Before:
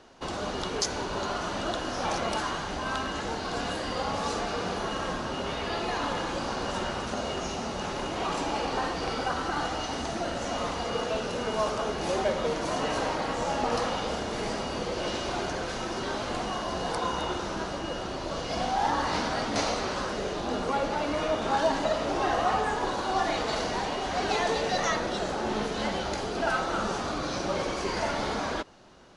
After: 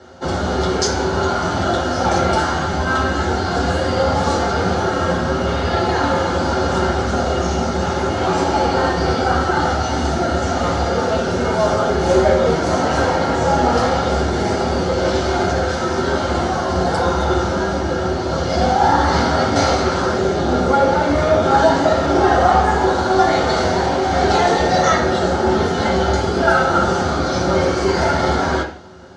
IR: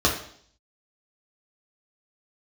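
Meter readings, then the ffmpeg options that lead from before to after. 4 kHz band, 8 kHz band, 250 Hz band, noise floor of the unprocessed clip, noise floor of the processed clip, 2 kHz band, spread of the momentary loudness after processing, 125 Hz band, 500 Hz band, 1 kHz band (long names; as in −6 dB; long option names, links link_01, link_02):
+7.5 dB, +9.0 dB, +13.5 dB, −34 dBFS, −21 dBFS, +11.0 dB, 5 LU, +18.0 dB, +13.5 dB, +12.5 dB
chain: -filter_complex "[1:a]atrim=start_sample=2205,asetrate=52920,aresample=44100[link_01];[0:a][link_01]afir=irnorm=-1:irlink=0,volume=-4dB"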